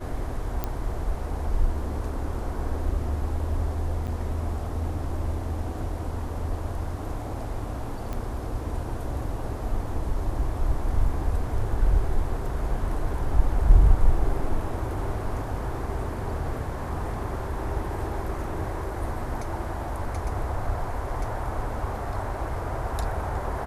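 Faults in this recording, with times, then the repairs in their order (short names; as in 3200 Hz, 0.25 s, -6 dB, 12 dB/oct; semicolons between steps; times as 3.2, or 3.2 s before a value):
0.64 pop -14 dBFS
4.07–4.08 gap 7.2 ms
8.13 pop -20 dBFS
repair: de-click; interpolate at 4.07, 7.2 ms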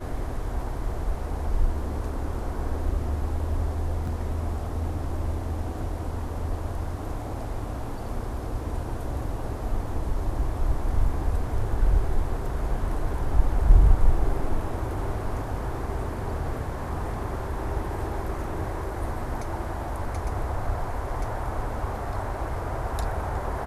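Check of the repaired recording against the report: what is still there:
none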